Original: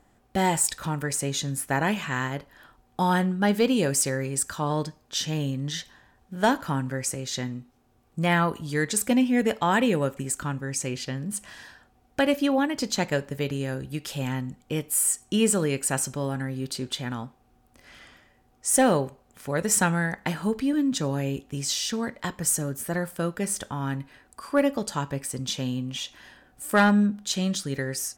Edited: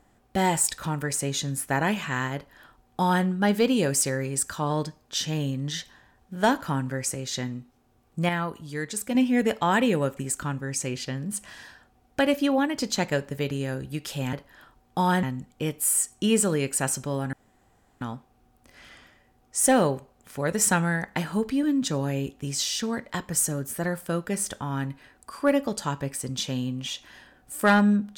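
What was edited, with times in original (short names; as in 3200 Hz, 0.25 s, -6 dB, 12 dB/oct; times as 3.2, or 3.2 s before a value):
2.35–3.25 copy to 14.33
8.29–9.15 gain -6 dB
16.43–17.11 room tone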